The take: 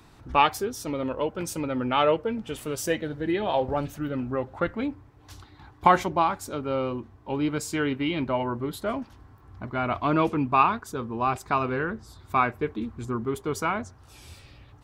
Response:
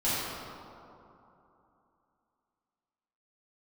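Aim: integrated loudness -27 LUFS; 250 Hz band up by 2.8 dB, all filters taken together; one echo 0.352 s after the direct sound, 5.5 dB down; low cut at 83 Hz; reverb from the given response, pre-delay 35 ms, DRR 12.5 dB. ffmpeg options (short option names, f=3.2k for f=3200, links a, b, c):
-filter_complex "[0:a]highpass=83,equalizer=f=250:t=o:g=3.5,aecho=1:1:352:0.531,asplit=2[a][b];[1:a]atrim=start_sample=2205,adelay=35[c];[b][c]afir=irnorm=-1:irlink=0,volume=-24dB[d];[a][d]amix=inputs=2:normalize=0,volume=-2dB"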